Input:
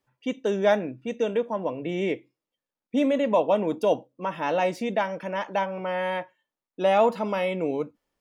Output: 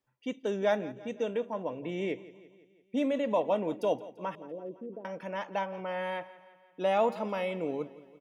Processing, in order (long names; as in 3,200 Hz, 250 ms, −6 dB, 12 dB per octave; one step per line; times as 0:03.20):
0:04.35–0:05.05: transistor ladder low-pass 470 Hz, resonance 55%
on a send: repeating echo 170 ms, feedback 56%, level −18 dB
on the sum: level −6.5 dB